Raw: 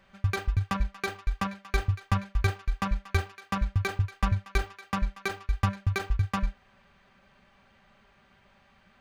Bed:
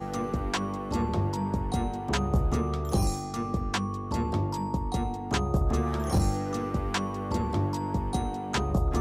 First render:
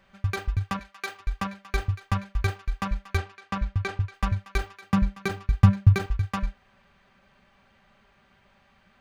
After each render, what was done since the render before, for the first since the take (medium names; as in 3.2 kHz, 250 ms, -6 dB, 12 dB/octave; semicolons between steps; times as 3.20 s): 0.79–1.20 s: high-pass 800 Hz 6 dB/octave; 3.18–4.14 s: distance through air 54 m; 4.82–6.06 s: peaking EQ 140 Hz +15 dB 1.8 oct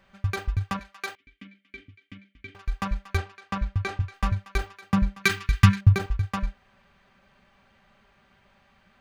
1.15–2.55 s: vowel filter i; 3.83–4.30 s: doubling 24 ms -9 dB; 5.24–5.81 s: FFT filter 390 Hz 0 dB, 590 Hz -15 dB, 1 kHz +3 dB, 1.9 kHz +12 dB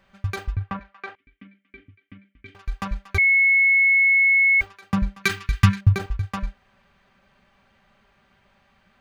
0.56–2.46 s: low-pass 2.1 kHz; 3.18–4.61 s: bleep 2.19 kHz -13.5 dBFS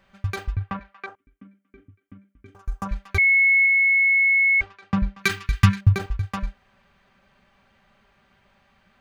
1.06–2.89 s: high-order bell 2.9 kHz -13.5 dB; 3.66–5.19 s: distance through air 110 m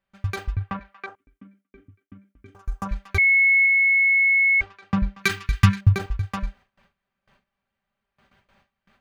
gate with hold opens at -50 dBFS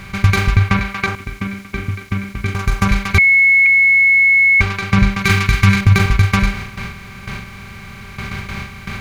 spectral levelling over time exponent 0.4; loudness maximiser +6 dB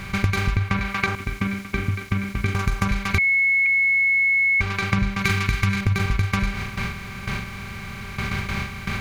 compression 6:1, threshold -18 dBFS, peak gain reduction 11.5 dB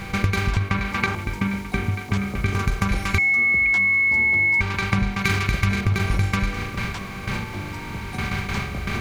add bed -6 dB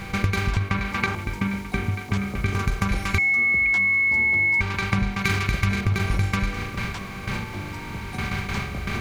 trim -1.5 dB